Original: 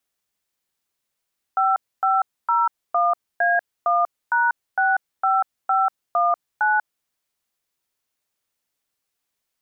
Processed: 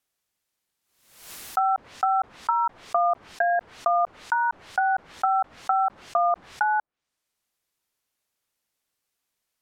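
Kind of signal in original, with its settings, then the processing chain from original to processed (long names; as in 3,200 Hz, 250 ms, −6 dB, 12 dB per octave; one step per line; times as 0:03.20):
touch tones "5501A1#65519", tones 191 ms, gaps 267 ms, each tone −18.5 dBFS
treble cut that deepens with the level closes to 1,000 Hz, closed at −19.5 dBFS
background raised ahead of every attack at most 79 dB per second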